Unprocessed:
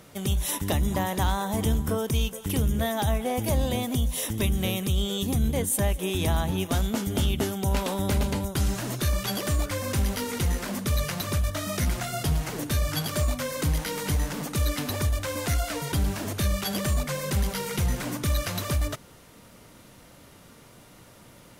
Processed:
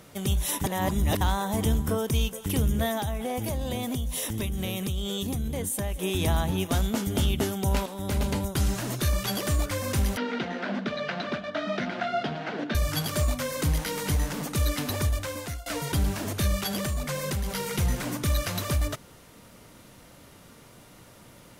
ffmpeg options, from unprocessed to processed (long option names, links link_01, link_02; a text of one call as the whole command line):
ffmpeg -i in.wav -filter_complex "[0:a]asettb=1/sr,asplit=3[link_01][link_02][link_03];[link_01]atrim=end=2.974[link_04];[link_02]atrim=start=2.97:end=6.01,asetpts=PTS-STARTPTS,afade=type=in:duration=0.004:curve=qsin,afade=type=out:start_time=3.036:duration=0.004:curve=qsin,acompressor=threshold=-26dB:ratio=6:attack=3.2:release=140:knee=1:detection=peak[link_05];[link_03]atrim=start=6.006[link_06];[link_04][link_05]acrossfade=duration=0.004:curve1=hsin:curve2=qsin[link_07];[link_07][link_06]acrossfade=duration=0.004:curve1=qsin:curve2=hsin,asettb=1/sr,asplit=3[link_08][link_09][link_10];[link_08]atrim=end=10.174[link_11];[link_09]atrim=start=10.17:end=12.75,asetpts=PTS-STARTPTS,afade=type=in:duration=0.004:curve=qsin,afade=type=out:start_time=2.576:duration=0.004:curve=qsin,highpass=frequency=190:width=0.5412,highpass=frequency=190:width=1.3066,equalizer=frequency=220:width_type=q:width=4:gain=5,equalizer=frequency=680:width_type=q:width=4:gain=7,equalizer=frequency=1100:width_type=q:width=4:gain=-3,equalizer=frequency=1500:width_type=q:width=4:gain=7,lowpass=frequency=3900:width=0.5412,lowpass=frequency=3900:width=1.3066[link_12];[link_10]atrim=start=12.746[link_13];[link_11][link_12]acrossfade=duration=0.004:curve1=hsin:curve2=qsin[link_14];[link_14][link_13]acrossfade=duration=0.004:curve1=qsin:curve2=hsin,asettb=1/sr,asplit=3[link_15][link_16][link_17];[link_15]atrim=end=16.664[link_18];[link_16]atrim=start=16.66:end=17.62,asetpts=PTS-STARTPTS,afade=type=in:duration=0.004:curve=qsin,afade=type=out:start_time=0.956:duration=0.004:curve=qsin,acompressor=threshold=-25dB:ratio=6:attack=3.2:release=140:knee=1:detection=peak[link_19];[link_17]atrim=start=17.616[link_20];[link_18][link_19]acrossfade=duration=0.004:curve1=hsin:curve2=qsin[link_21];[link_21][link_20]acrossfade=duration=0.004:curve1=qsin:curve2=hsin,asplit=5[link_22][link_23][link_24][link_25][link_26];[link_22]atrim=end=0.642[link_27];[link_23]atrim=start=0.638:end=1.212,asetpts=PTS-STARTPTS,areverse[link_28];[link_24]atrim=start=1.208:end=7.86,asetpts=PTS-STARTPTS,afade=type=out:start_time=6.648:duration=0.004:curve=hsin:silence=0.223872[link_29];[link_25]atrim=start=7.86:end=15.66,asetpts=PTS-STARTPTS,afade=type=in:duration=0.44:silence=0.223872,afade=type=out:start_time=7.07:duration=0.73:curve=qsin:silence=0.0794328[link_30];[link_26]atrim=start=15.66,asetpts=PTS-STARTPTS,afade=type=in:duration=0.004:curve=hsin:silence=0.0794328[link_31];[link_27][link_28]acrossfade=duration=0.004:curve1=hsin:curve2=hsin[link_32];[link_29][link_30][link_31]concat=n=3:v=0:a=1[link_33];[link_32][link_33]acrossfade=duration=0.004:curve1=hsin:curve2=hsin" out.wav